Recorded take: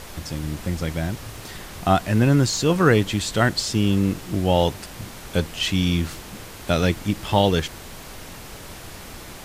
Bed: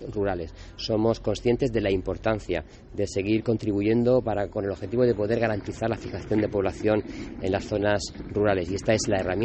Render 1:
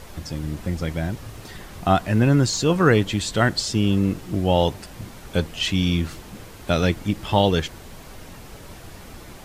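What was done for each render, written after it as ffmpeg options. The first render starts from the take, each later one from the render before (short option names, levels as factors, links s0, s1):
-af "afftdn=nr=6:nf=-39"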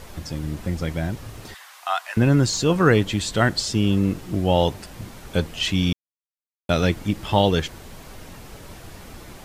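-filter_complex "[0:a]asettb=1/sr,asplit=3[s0][s1][s2];[s0]atrim=end=1.544[s3];[s1]atrim=start=1.54:end=2.17,asetpts=PTS-STARTPTS,afade=t=in:d=0.004:c=qsin,afade=t=out:st=0.626:d=0.004:c=qsin,highpass=f=880:w=0.5412,highpass=f=880:w=1.3066[s4];[s2]atrim=start=2.166[s5];[s3][s4]acrossfade=d=0.004:c1=hsin:c2=qsin[s6];[s6][s5]acrossfade=d=0.004:c1=qsin:c2=hsin,asplit=3[s7][s8][s9];[s7]atrim=end=5.93,asetpts=PTS-STARTPTS,afade=t=out:st=5.926:d=0.004:c=hsin[s10];[s8]atrim=start=5.93:end=6.69,asetpts=PTS-STARTPTS,volume=0[s11];[s9]atrim=start=6.69,asetpts=PTS-STARTPTS,afade=t=in:d=0.004:c=hsin[s12];[s10][s11][s12]concat=n=3:v=0:a=1"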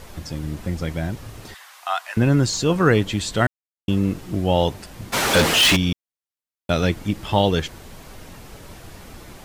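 -filter_complex "[0:a]asplit=3[s0][s1][s2];[s0]afade=t=out:st=5.12:d=0.02[s3];[s1]asplit=2[s4][s5];[s5]highpass=f=720:p=1,volume=56.2,asoftclip=type=tanh:threshold=0.398[s6];[s4][s6]amix=inputs=2:normalize=0,lowpass=f=7100:p=1,volume=0.501,afade=t=in:st=5.12:d=0.02,afade=t=out:st=5.75:d=0.02[s7];[s2]afade=t=in:st=5.75:d=0.02[s8];[s3][s7][s8]amix=inputs=3:normalize=0,asplit=3[s9][s10][s11];[s9]atrim=end=3.47,asetpts=PTS-STARTPTS,afade=t=out:st=3.466:d=0.004:c=hsin[s12];[s10]atrim=start=3.47:end=3.88,asetpts=PTS-STARTPTS,volume=0[s13];[s11]atrim=start=3.88,asetpts=PTS-STARTPTS,afade=t=in:d=0.004:c=hsin[s14];[s12][s13][s14]concat=n=3:v=0:a=1"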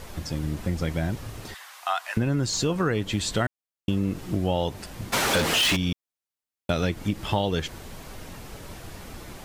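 -af "acompressor=threshold=0.0891:ratio=6"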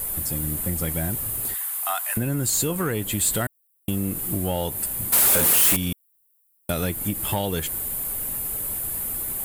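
-af "aexciter=amount=15.4:drive=7.5:freq=8500,asoftclip=type=tanh:threshold=0.188"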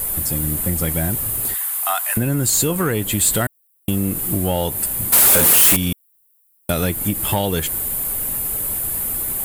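-af "volume=1.88"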